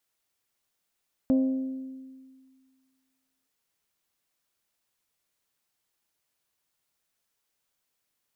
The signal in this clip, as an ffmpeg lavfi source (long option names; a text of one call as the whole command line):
ffmpeg -f lavfi -i "aevalsrc='0.126*pow(10,-3*t/1.85)*sin(2*PI*263*t)+0.0376*pow(10,-3*t/1.139)*sin(2*PI*526*t)+0.0112*pow(10,-3*t/1.002)*sin(2*PI*631.2*t)+0.00335*pow(10,-3*t/0.857)*sin(2*PI*789*t)+0.001*pow(10,-3*t/0.701)*sin(2*PI*1052*t)':duration=2.17:sample_rate=44100" out.wav